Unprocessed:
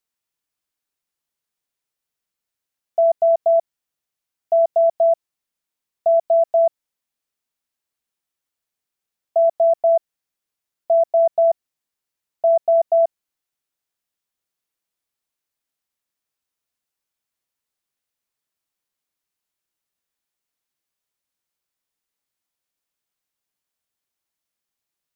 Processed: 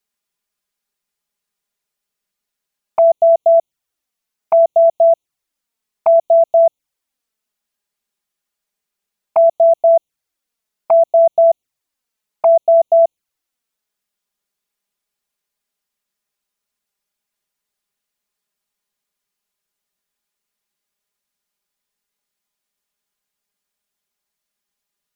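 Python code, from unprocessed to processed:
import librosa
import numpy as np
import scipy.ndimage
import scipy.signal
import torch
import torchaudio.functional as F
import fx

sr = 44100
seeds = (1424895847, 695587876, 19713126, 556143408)

y = fx.env_flanger(x, sr, rest_ms=4.9, full_db=-18.0)
y = y * 10.0 ** (7.0 / 20.0)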